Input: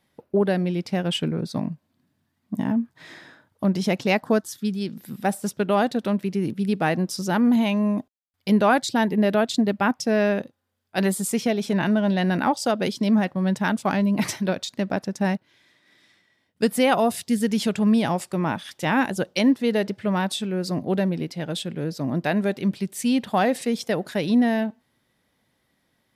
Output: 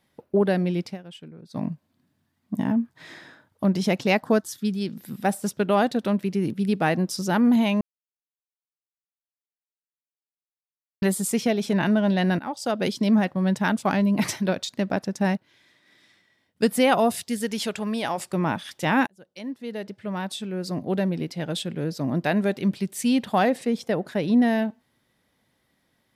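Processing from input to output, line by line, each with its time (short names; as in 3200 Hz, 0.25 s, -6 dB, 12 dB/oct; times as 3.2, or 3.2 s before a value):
0.83–1.64 dip -18 dB, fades 0.15 s
7.81–11.02 mute
12.39–12.87 fade in, from -17.5 dB
17.23–18.17 bell 160 Hz -7 dB -> -14 dB 2 oct
19.07–21.41 fade in
23.49–24.42 high shelf 2300 Hz -8 dB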